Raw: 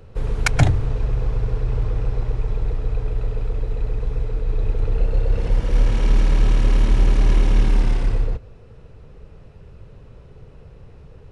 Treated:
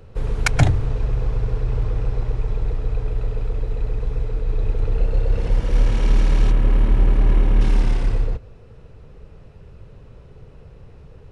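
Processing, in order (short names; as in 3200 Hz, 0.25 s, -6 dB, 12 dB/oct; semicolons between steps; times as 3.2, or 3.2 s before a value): 6.51–7.61 bell 6200 Hz -14 dB 1.8 oct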